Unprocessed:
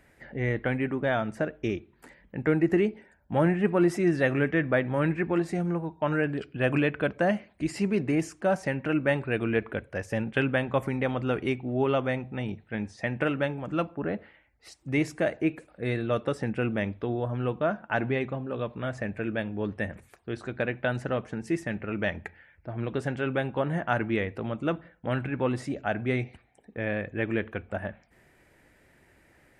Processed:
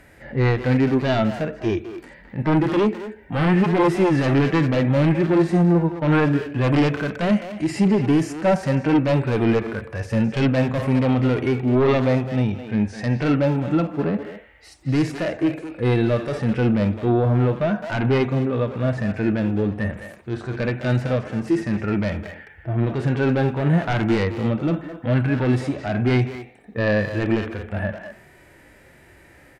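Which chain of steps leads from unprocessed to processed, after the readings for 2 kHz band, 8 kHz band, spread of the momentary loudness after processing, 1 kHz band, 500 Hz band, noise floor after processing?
+2.5 dB, no reading, 10 LU, +6.5 dB, +6.0 dB, -50 dBFS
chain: sine folder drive 12 dB, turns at -10 dBFS; speakerphone echo 210 ms, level -7 dB; harmonic-percussive split percussive -17 dB; trim -1.5 dB

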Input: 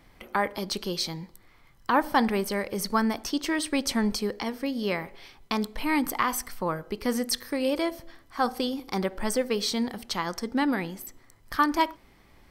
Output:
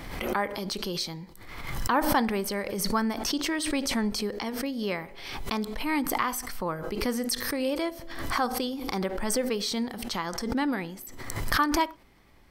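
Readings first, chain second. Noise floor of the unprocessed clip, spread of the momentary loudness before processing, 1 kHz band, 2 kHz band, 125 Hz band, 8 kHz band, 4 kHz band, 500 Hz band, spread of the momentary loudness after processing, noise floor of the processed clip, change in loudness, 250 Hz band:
-57 dBFS, 7 LU, -1.5 dB, -0.5 dB, +1.0 dB, +1.0 dB, 0.0 dB, -1.5 dB, 9 LU, -51 dBFS, -1.0 dB, -1.5 dB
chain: swell ahead of each attack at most 43 dB/s; trim -2.5 dB

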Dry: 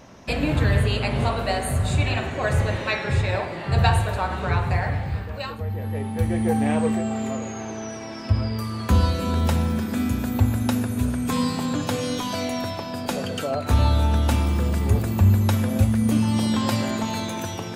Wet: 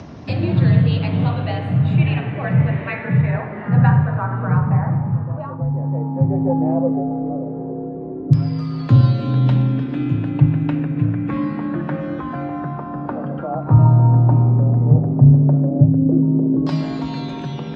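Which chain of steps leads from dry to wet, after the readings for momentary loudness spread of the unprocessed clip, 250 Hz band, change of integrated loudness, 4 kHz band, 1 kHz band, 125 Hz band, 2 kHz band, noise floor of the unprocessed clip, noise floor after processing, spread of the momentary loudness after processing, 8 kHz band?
9 LU, +5.5 dB, +5.5 dB, no reading, 0.0 dB, +8.0 dB, -2.5 dB, -33 dBFS, -29 dBFS, 13 LU, under -20 dB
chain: frequency shift +46 Hz; in parallel at -1 dB: upward compressor, threshold -21 dBFS; on the sum: RIAA curve playback; LFO low-pass saw down 0.12 Hz 430–5100 Hz; trim -10 dB

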